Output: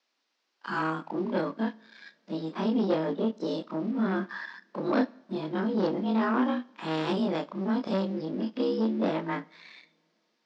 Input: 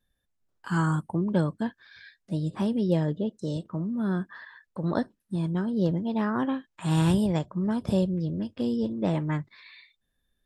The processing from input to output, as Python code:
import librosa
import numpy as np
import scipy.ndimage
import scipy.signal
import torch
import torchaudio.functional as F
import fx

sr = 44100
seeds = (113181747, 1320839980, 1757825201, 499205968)

y = fx.frame_reverse(x, sr, frame_ms=63.0)
y = fx.rider(y, sr, range_db=10, speed_s=2.0)
y = fx.leveller(y, sr, passes=2)
y = fx.quant_dither(y, sr, seeds[0], bits=12, dither='triangular')
y = scipy.signal.sosfilt(scipy.signal.ellip(3, 1.0, 40, [240.0, 5200.0], 'bandpass', fs=sr, output='sos'), y)
y = fx.rev_double_slope(y, sr, seeds[1], early_s=0.6, late_s=3.5, knee_db=-22, drr_db=18.5)